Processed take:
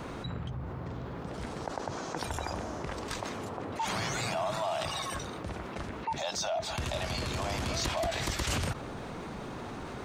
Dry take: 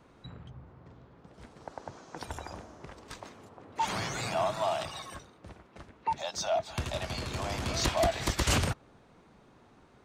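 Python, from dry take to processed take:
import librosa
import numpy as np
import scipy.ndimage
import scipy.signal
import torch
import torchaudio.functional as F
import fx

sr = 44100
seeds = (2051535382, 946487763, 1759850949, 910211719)

y = fx.env_flatten(x, sr, amount_pct=70)
y = y * librosa.db_to_amplitude(-6.5)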